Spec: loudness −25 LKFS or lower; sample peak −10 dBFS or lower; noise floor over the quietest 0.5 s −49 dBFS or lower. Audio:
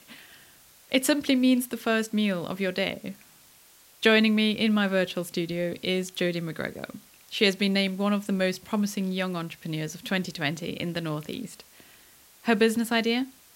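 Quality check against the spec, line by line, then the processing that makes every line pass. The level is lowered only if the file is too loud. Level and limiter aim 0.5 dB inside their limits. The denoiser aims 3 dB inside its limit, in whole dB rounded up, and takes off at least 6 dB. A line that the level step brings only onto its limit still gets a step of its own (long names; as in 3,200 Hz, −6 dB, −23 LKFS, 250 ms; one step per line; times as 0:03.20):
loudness −26.5 LKFS: in spec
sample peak −7.0 dBFS: out of spec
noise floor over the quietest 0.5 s −56 dBFS: in spec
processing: brickwall limiter −10.5 dBFS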